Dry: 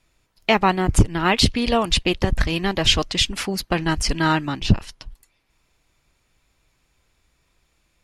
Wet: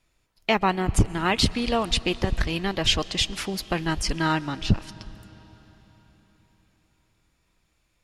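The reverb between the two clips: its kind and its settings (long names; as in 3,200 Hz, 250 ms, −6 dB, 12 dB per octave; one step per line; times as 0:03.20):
comb and all-pass reverb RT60 4.6 s, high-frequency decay 0.9×, pre-delay 90 ms, DRR 18 dB
level −4.5 dB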